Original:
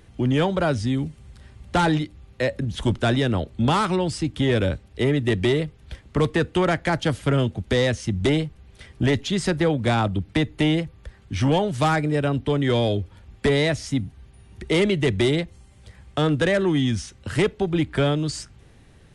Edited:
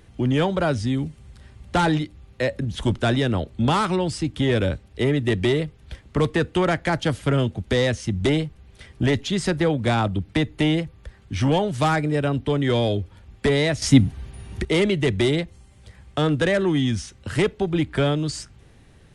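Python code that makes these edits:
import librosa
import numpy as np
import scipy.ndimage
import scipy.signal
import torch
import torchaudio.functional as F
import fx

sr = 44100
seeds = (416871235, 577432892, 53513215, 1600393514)

y = fx.edit(x, sr, fx.clip_gain(start_s=13.82, length_s=0.83, db=10.5), tone=tone)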